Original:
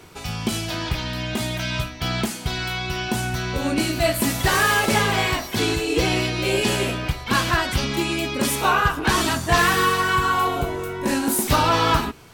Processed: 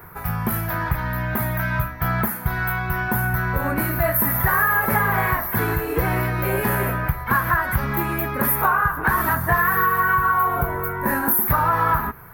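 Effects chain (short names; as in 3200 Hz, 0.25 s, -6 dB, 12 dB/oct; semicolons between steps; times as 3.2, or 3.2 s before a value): EQ curve 170 Hz 0 dB, 290 Hz -10 dB, 450 Hz -5 dB, 710 Hz -3 dB, 1000 Hz +3 dB, 1800 Hz +3 dB, 2900 Hz -21 dB, 7700 Hz -22 dB, 13000 Hz +12 dB; compressor, threshold -20 dBFS, peak gain reduction 8.5 dB; gain +4.5 dB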